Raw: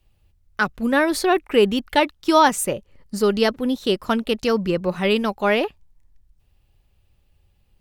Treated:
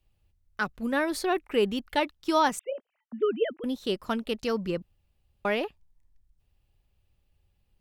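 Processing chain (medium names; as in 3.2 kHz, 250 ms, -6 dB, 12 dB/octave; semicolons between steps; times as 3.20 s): 2.59–3.64 s: formants replaced by sine waves; 4.82–5.45 s: room tone; trim -8.5 dB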